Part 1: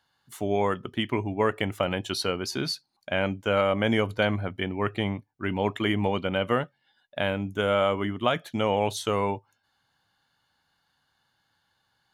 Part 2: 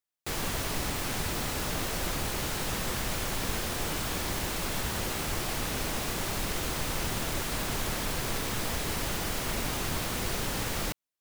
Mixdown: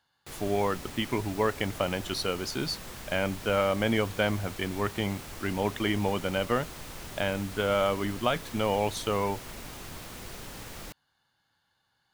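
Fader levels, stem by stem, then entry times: −2.5, −10.5 decibels; 0.00, 0.00 seconds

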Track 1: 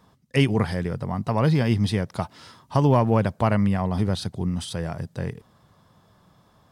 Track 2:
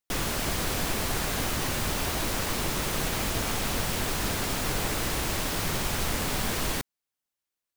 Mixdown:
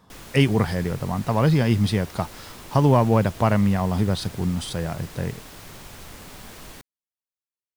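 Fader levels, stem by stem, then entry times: +1.5, −13.0 decibels; 0.00, 0.00 seconds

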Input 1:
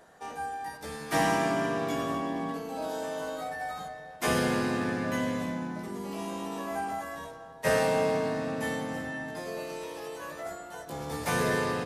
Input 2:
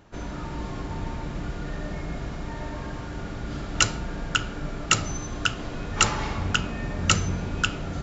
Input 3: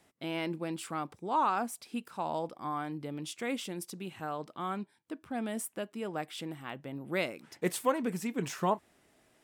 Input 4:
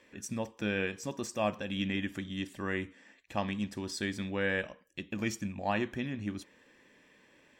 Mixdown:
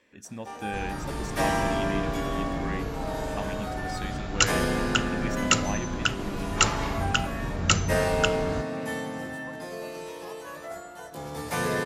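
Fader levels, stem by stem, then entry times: 0.0, −1.0, −19.0, −3.0 decibels; 0.25, 0.60, 1.60, 0.00 seconds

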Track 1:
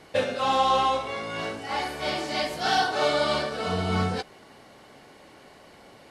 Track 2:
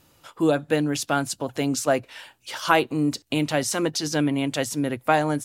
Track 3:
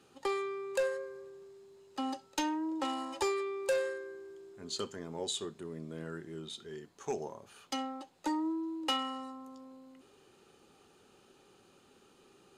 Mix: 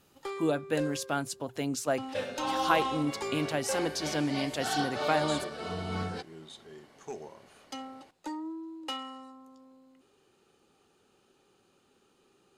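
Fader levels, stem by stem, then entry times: −9.0, −8.0, −4.5 decibels; 2.00, 0.00, 0.00 seconds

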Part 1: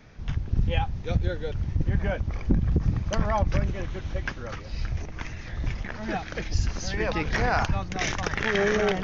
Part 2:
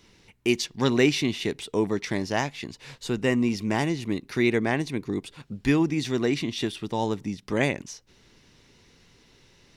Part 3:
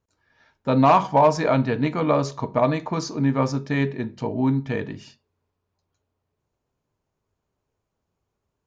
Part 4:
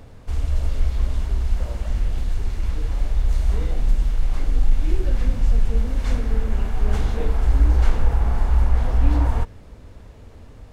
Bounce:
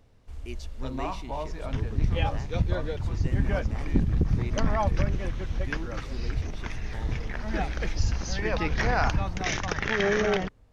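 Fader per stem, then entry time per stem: −1.0, −18.5, −18.5, −16.5 decibels; 1.45, 0.00, 0.15, 0.00 seconds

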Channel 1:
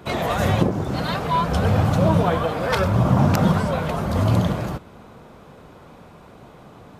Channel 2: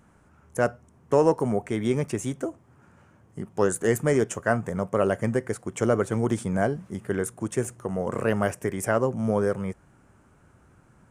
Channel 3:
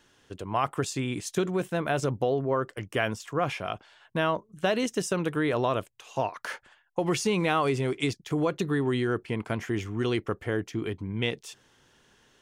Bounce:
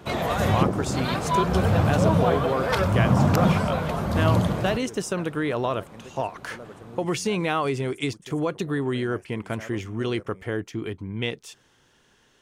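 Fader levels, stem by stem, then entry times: −2.5, −20.0, +0.5 decibels; 0.00, 0.70, 0.00 seconds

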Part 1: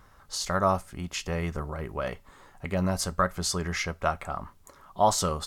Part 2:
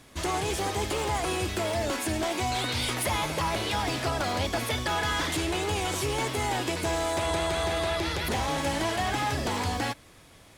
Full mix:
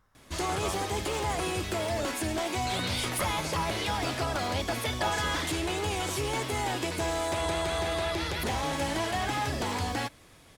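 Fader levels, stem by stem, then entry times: −12.5, −2.0 decibels; 0.00, 0.15 seconds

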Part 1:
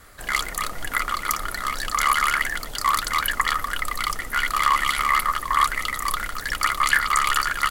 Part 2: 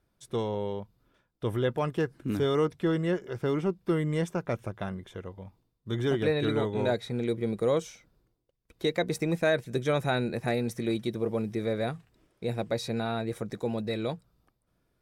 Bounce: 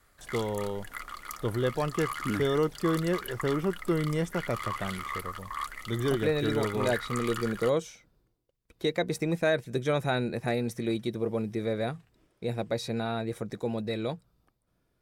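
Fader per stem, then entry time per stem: −16.0, −0.5 decibels; 0.00, 0.00 seconds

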